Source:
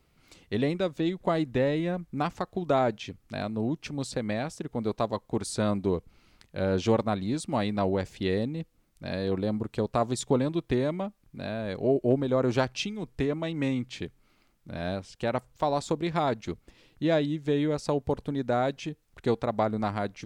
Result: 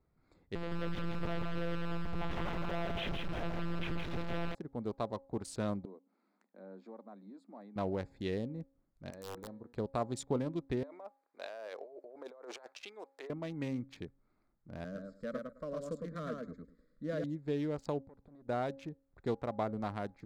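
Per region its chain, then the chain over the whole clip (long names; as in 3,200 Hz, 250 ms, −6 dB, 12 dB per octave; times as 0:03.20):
0:00.55–0:04.55: sign of each sample alone + one-pitch LPC vocoder at 8 kHz 170 Hz + feedback echo at a low word length 164 ms, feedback 35%, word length 9 bits, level −3 dB
0:05.85–0:07.76: downward compressor 2 to 1, threshold −47 dBFS + Chebyshev high-pass with heavy ripple 190 Hz, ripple 3 dB
0:09.10–0:09.73: low-shelf EQ 170 Hz −10 dB + tuned comb filter 120 Hz, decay 0.84 s + wrap-around overflow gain 28.5 dB
0:10.83–0:13.30: high-pass filter 490 Hz 24 dB per octave + compressor whose output falls as the input rises −39 dBFS
0:14.84–0:17.24: Butterworth band-reject 840 Hz, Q 1.5 + phaser with its sweep stopped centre 540 Hz, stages 8 + repeating echo 107 ms, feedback 16%, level −3 dB
0:18.04–0:18.49: downward compressor 8 to 1, threshold −38 dBFS + tube saturation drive 43 dB, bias 0.8
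whole clip: adaptive Wiener filter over 15 samples; hum removal 272.7 Hz, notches 3; level −8.5 dB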